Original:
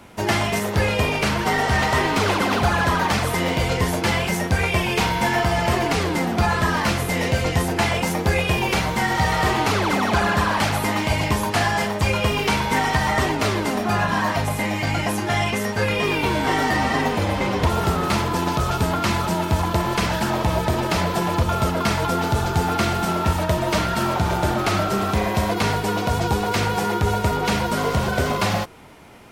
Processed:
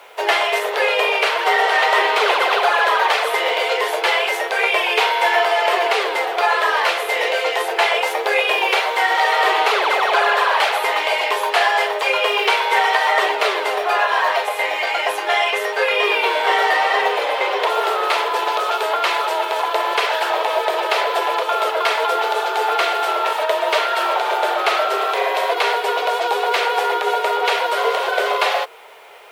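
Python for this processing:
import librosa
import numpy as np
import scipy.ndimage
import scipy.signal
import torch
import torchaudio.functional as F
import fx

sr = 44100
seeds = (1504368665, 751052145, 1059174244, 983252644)

y = scipy.signal.sosfilt(scipy.signal.cheby1(5, 1.0, 420.0, 'highpass', fs=sr, output='sos'), x)
y = fx.high_shelf_res(y, sr, hz=4500.0, db=-7.5, q=1.5)
y = fx.quant_dither(y, sr, seeds[0], bits=10, dither='none')
y = y * 10.0 ** (5.5 / 20.0)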